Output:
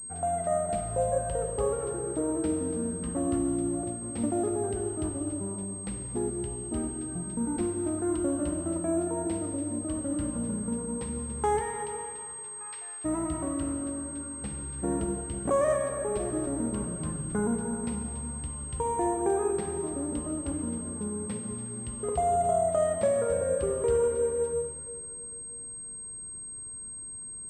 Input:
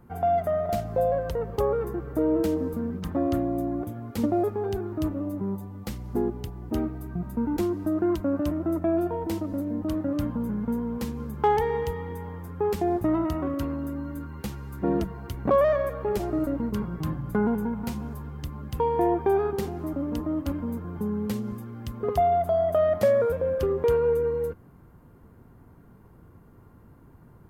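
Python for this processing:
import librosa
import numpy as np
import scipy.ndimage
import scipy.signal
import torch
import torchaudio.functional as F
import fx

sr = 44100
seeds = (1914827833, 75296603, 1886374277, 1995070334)

y = fx.highpass(x, sr, hz=fx.line((11.59, 470.0), (13.04, 1500.0)), slope=24, at=(11.59, 13.04), fade=0.02)
y = fx.rev_plate(y, sr, seeds[0], rt60_s=2.6, hf_ratio=0.95, predelay_ms=0, drr_db=3.0)
y = fx.pwm(y, sr, carrier_hz=8400.0)
y = y * librosa.db_to_amplitude(-5.5)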